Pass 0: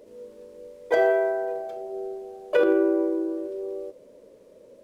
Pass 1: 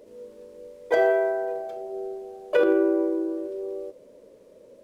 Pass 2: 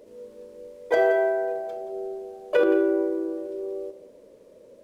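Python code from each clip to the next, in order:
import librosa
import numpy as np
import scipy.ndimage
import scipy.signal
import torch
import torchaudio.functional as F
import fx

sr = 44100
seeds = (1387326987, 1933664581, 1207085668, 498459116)

y1 = x
y2 = y1 + 10.0 ** (-14.0 / 20.0) * np.pad(y1, (int(175 * sr / 1000.0), 0))[:len(y1)]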